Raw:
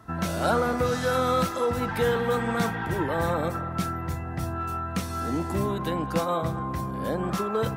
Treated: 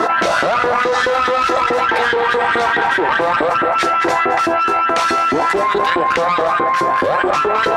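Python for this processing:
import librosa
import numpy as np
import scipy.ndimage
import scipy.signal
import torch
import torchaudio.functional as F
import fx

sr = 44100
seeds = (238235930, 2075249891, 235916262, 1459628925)

p1 = scipy.signal.sosfilt(scipy.signal.butter(2, 5200.0, 'lowpass', fs=sr, output='sos'), x)
p2 = fx.rider(p1, sr, range_db=10, speed_s=0.5)
p3 = p1 + (p2 * 10.0 ** (0.5 / 20.0))
p4 = fx.filter_lfo_highpass(p3, sr, shape='saw_up', hz=4.7, low_hz=320.0, high_hz=2000.0, q=3.2)
p5 = p4 + fx.echo_multitap(p4, sr, ms=(74, 218), db=(-18.5, -14.0), dry=0)
p6 = fx.tube_stage(p5, sr, drive_db=13.0, bias=0.7)
p7 = scipy.signal.sosfilt(scipy.signal.butter(2, 59.0, 'highpass', fs=sr, output='sos'), p6)
p8 = fx.low_shelf(p7, sr, hz=420.0, db=-5.0)
p9 = fx.env_flatten(p8, sr, amount_pct=100)
y = p9 * 10.0 ** (1.5 / 20.0)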